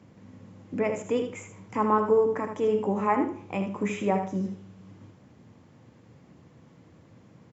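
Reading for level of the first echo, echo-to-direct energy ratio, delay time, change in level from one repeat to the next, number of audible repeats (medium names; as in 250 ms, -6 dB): -8.0 dB, -8.0 dB, 79 ms, -14.0 dB, 2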